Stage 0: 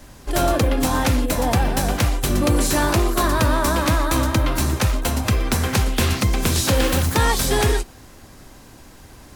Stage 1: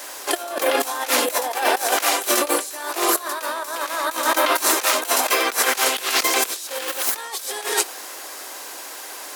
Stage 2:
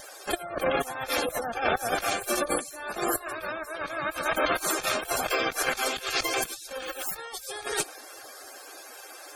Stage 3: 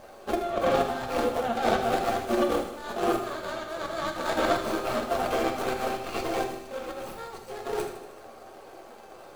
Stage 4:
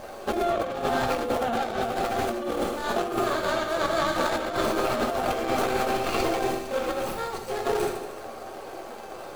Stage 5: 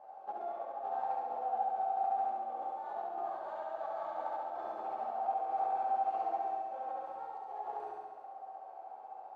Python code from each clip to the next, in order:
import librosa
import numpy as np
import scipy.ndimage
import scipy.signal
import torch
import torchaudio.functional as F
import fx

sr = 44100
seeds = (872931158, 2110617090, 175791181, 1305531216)

y1 = scipy.signal.sosfilt(scipy.signal.bessel(8, 620.0, 'highpass', norm='mag', fs=sr, output='sos'), x)
y1 = fx.high_shelf(y1, sr, hz=8300.0, db=6.5)
y1 = fx.over_compress(y1, sr, threshold_db=-29.0, ratio=-0.5)
y1 = F.gain(torch.from_numpy(y1), 7.5).numpy()
y2 = np.maximum(y1, 0.0)
y2 = fx.spec_gate(y2, sr, threshold_db=-25, keep='strong')
y2 = fx.notch_comb(y2, sr, f0_hz=980.0)
y3 = scipy.ndimage.median_filter(y2, 25, mode='constant')
y3 = fx.echo_feedback(y3, sr, ms=78, feedback_pct=58, wet_db=-11.0)
y3 = fx.rev_fdn(y3, sr, rt60_s=0.64, lf_ratio=1.1, hf_ratio=1.0, size_ms=26.0, drr_db=3.0)
y3 = F.gain(torch.from_numpy(y3), 3.0).numpy()
y4 = fx.over_compress(y3, sr, threshold_db=-31.0, ratio=-1.0)
y4 = F.gain(torch.from_numpy(y4), 5.0).numpy()
y5 = fx.bandpass_q(y4, sr, hz=800.0, q=8.9)
y5 = fx.room_flutter(y5, sr, wall_m=11.8, rt60_s=1.4)
y5 = F.gain(torch.from_numpy(y5), -5.0).numpy()